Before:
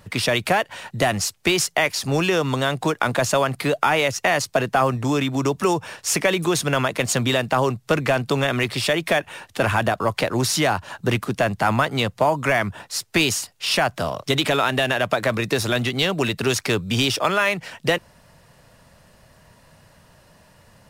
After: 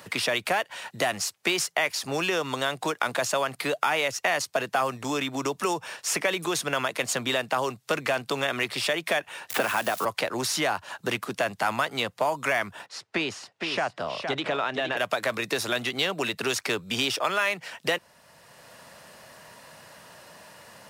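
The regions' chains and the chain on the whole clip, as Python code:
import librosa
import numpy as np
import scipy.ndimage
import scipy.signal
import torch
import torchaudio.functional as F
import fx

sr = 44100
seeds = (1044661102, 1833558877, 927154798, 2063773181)

y = fx.chain(x, sr, fx.crossing_spikes(level_db=-24.0),
    fx.highpass(hz=130.0, slope=24),
    fx.band_squash(depth_pct=100), at=(9.5, 10.05))
y = fx.chain(y, sr, fx.spacing_loss(db_at_10k=23),
    fx.echo_single(ms=464, db=-7.5), at=(12.86, 14.97))
y = fx.highpass(y, sr, hz=510.0, slope=6)
y = fx.band_squash(y, sr, depth_pct=40)
y = y * librosa.db_to_amplitude(-4.0)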